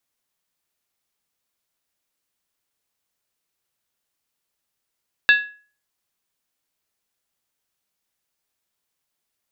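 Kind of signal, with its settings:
struck skin, lowest mode 1,680 Hz, decay 0.40 s, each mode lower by 6 dB, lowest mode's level −8 dB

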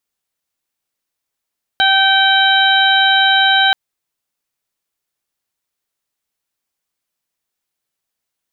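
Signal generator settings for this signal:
steady harmonic partials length 1.93 s, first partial 775 Hz, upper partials 2/−10/−1/−1 dB, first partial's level −15 dB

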